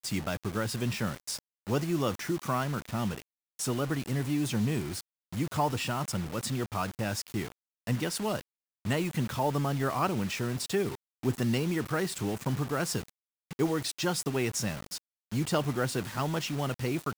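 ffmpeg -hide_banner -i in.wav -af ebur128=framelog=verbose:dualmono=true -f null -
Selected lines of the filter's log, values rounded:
Integrated loudness:
  I:         -28.7 LUFS
  Threshold: -38.9 LUFS
Loudness range:
  LRA:         2.2 LU
  Threshold: -48.9 LUFS
  LRA low:   -29.8 LUFS
  LRA high:  -27.6 LUFS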